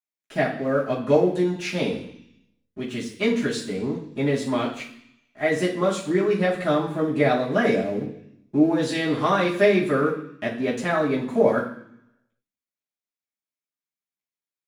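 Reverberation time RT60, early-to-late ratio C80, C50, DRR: 0.65 s, 11.0 dB, 7.5 dB, −11.5 dB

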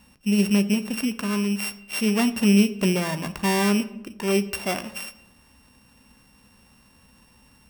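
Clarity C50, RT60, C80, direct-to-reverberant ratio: 16.0 dB, 0.85 s, 18.0 dB, 11.0 dB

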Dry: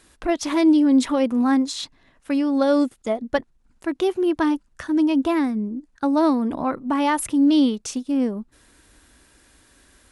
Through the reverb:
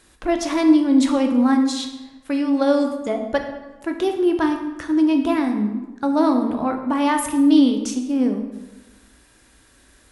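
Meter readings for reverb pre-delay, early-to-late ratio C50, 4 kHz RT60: 10 ms, 7.0 dB, 0.80 s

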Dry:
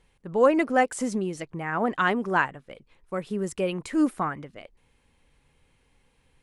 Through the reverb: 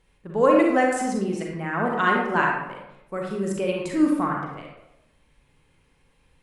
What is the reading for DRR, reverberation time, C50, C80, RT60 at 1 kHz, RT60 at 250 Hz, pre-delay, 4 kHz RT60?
−1.5 dB, 0.85 s, 1.0 dB, 4.5 dB, 0.85 s, 0.90 s, 33 ms, 0.55 s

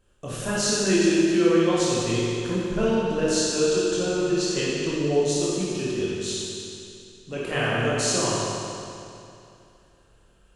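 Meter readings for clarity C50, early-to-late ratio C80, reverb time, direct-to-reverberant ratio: −4.0 dB, −2.0 dB, 2.7 s, −8.0 dB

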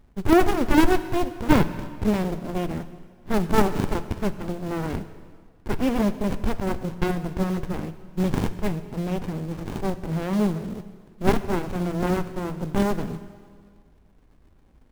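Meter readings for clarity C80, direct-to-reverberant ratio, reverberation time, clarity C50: 14.0 dB, 11.5 dB, 1.8 s, 13.0 dB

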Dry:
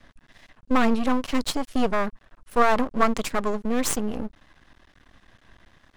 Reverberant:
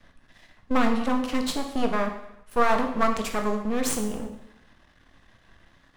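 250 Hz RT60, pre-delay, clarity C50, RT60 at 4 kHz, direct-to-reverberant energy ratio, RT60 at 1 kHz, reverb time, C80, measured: 0.85 s, 6 ms, 7.5 dB, 0.75 s, 4.0 dB, 0.75 s, 0.80 s, 10.0 dB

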